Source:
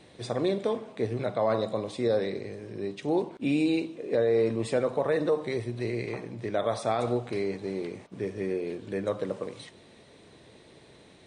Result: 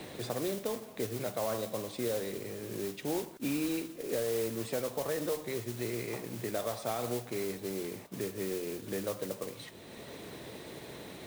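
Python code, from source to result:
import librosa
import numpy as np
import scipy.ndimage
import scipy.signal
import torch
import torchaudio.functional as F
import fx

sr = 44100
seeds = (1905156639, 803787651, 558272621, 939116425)

y = fx.mod_noise(x, sr, seeds[0], snr_db=10)
y = fx.band_squash(y, sr, depth_pct=70)
y = y * librosa.db_to_amplitude(-7.5)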